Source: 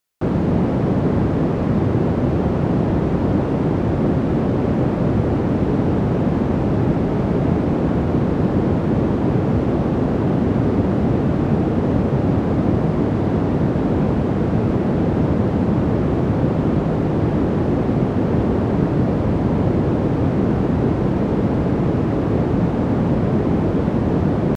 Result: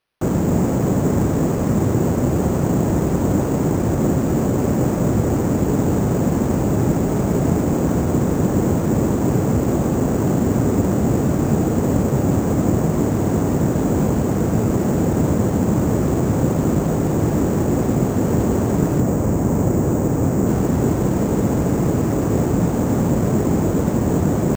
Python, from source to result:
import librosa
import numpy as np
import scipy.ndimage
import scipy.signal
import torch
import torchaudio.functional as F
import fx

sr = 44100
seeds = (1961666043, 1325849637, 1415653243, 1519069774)

y = fx.lowpass(x, sr, hz=2100.0, slope=6, at=(19.0, 20.47))
y = np.repeat(y[::6], 6)[:len(y)]